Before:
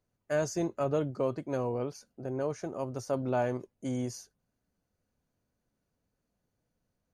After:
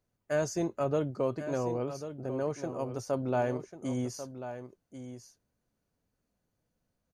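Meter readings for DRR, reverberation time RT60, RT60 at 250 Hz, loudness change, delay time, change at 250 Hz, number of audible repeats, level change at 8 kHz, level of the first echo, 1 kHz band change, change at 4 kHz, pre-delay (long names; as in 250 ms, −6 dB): no reverb audible, no reverb audible, no reverb audible, 0.0 dB, 1,092 ms, +0.5 dB, 1, +0.5 dB, −11.0 dB, +0.5 dB, +0.5 dB, no reverb audible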